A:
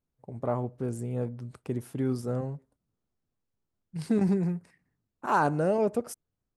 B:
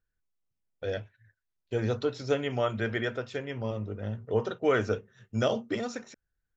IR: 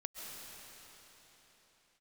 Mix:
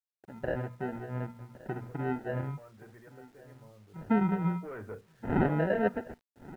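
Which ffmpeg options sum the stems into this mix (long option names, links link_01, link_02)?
-filter_complex "[0:a]bandreject=frequency=60:width_type=h:width=6,bandreject=frequency=120:width_type=h:width=6,bandreject=frequency=180:width_type=h:width=6,bandreject=frequency=240:width_type=h:width=6,flanger=delay=0.9:depth=5.8:regen=17:speed=0.8:shape=sinusoidal,acrusher=samples=39:mix=1:aa=0.000001,volume=1dB,asplit=2[link_01][link_02];[link_02]volume=-20dB[link_03];[1:a]asoftclip=type=tanh:threshold=-26.5dB,volume=-7.5dB,afade=type=in:start_time=4.31:duration=0.76:silence=0.223872[link_04];[link_03]aecho=0:1:1123:1[link_05];[link_01][link_04][link_05]amix=inputs=3:normalize=0,lowpass=frequency=1900:width=0.5412,lowpass=frequency=1900:width=1.3066,acrusher=bits=10:mix=0:aa=0.000001"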